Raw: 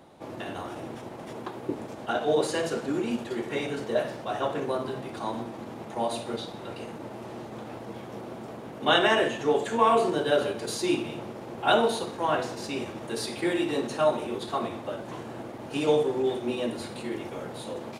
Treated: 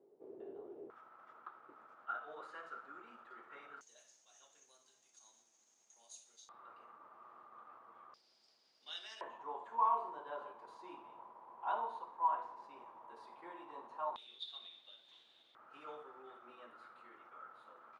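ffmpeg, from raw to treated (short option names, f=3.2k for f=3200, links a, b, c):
-af "asetnsamples=n=441:p=0,asendcmd='0.9 bandpass f 1300;3.81 bandpass f 6500;6.49 bandpass f 1200;8.14 bandpass f 4900;9.21 bandpass f 990;14.16 bandpass f 3600;15.55 bandpass f 1300',bandpass=f=410:t=q:w=13:csg=0"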